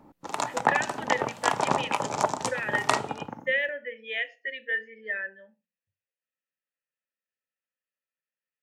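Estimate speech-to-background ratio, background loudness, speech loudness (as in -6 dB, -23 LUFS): -2.5 dB, -29.0 LUFS, -31.5 LUFS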